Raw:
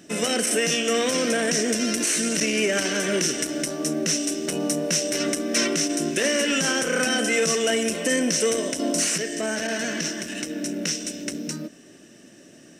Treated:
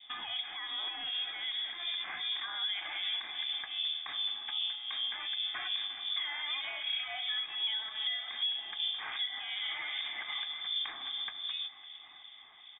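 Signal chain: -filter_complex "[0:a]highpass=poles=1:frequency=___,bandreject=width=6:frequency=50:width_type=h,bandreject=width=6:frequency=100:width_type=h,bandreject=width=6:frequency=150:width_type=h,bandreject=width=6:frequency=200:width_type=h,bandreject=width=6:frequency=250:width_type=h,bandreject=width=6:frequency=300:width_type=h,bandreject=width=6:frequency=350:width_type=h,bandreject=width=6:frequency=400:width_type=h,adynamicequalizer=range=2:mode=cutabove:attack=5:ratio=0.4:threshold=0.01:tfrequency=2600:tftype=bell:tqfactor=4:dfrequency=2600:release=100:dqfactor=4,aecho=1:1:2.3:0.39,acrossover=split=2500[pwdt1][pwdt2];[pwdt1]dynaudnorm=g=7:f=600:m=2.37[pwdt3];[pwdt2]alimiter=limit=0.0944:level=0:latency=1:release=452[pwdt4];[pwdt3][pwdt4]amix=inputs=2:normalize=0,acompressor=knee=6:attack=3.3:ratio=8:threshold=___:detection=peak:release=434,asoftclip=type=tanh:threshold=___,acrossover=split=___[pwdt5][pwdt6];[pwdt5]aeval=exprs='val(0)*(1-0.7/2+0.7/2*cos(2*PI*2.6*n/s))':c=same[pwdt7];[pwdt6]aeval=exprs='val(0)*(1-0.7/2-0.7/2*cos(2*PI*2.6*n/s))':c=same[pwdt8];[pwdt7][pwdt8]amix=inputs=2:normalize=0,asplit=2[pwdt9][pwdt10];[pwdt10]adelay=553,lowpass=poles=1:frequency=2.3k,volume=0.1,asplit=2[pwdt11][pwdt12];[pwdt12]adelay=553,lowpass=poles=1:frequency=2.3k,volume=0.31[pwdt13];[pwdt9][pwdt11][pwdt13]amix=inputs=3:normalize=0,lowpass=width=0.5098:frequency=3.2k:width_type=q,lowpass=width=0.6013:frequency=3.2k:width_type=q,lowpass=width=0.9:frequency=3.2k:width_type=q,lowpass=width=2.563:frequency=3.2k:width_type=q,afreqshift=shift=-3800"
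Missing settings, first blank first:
230, 0.0398, 0.075, 1500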